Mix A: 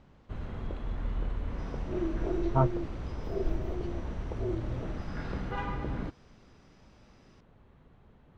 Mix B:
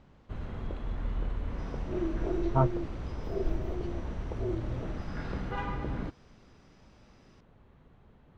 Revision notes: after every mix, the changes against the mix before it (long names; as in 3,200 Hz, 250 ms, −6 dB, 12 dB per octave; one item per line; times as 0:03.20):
nothing changed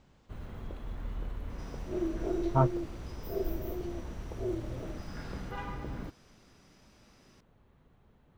first sound −5.0 dB
master: remove high-frequency loss of the air 86 metres